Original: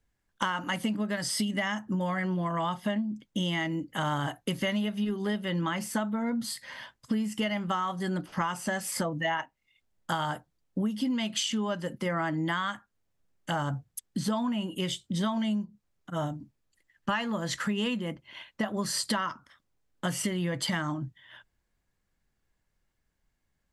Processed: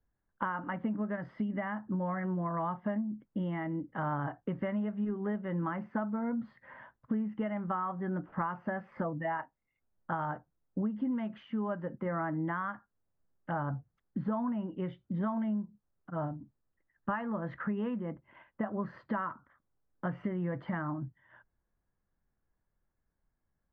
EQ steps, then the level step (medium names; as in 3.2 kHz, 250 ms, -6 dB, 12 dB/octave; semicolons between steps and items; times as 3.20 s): low-pass 1.6 kHz 24 dB/octave; -3.5 dB